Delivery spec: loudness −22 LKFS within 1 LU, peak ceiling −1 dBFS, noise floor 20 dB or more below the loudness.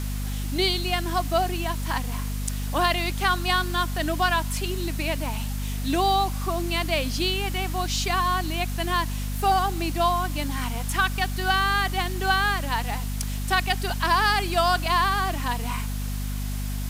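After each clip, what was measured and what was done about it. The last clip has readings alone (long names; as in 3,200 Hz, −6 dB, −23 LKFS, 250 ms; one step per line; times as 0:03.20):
mains hum 50 Hz; hum harmonics up to 250 Hz; level of the hum −26 dBFS; background noise floor −29 dBFS; target noise floor −45 dBFS; integrated loudness −25.0 LKFS; sample peak −8.5 dBFS; target loudness −22.0 LKFS
→ mains-hum notches 50/100/150/200/250 Hz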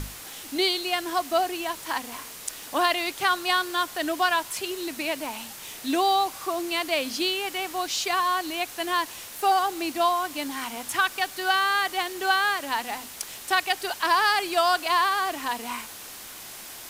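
mains hum none found; background noise floor −41 dBFS; target noise floor −46 dBFS
→ noise reduction from a noise print 6 dB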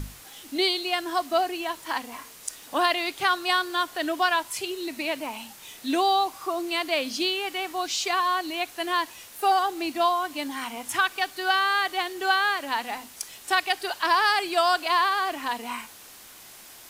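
background noise floor −47 dBFS; integrated loudness −25.5 LKFS; sample peak −9.0 dBFS; target loudness −22.0 LKFS
→ level +3.5 dB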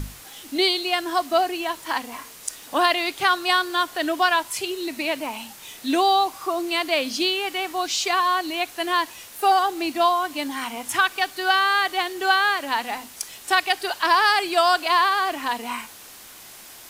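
integrated loudness −22.0 LKFS; sample peak −5.5 dBFS; background noise floor −44 dBFS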